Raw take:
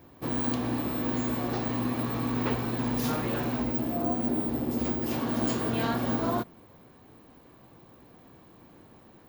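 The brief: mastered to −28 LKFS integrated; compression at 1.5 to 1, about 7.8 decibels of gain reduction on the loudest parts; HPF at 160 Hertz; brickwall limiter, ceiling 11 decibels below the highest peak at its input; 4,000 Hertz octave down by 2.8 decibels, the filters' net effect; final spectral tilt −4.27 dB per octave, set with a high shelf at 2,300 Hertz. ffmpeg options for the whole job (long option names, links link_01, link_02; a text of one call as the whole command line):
ffmpeg -i in.wav -af "highpass=160,highshelf=frequency=2300:gain=3,equalizer=frequency=4000:width_type=o:gain=-6.5,acompressor=threshold=-47dB:ratio=1.5,volume=16dB,alimiter=limit=-19dB:level=0:latency=1" out.wav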